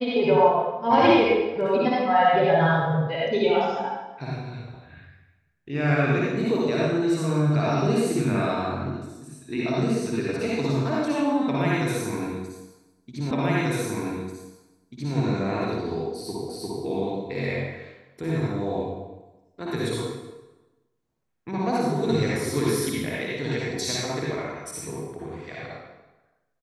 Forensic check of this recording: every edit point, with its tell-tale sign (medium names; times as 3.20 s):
13.31 s: repeat of the last 1.84 s
16.49 s: repeat of the last 0.35 s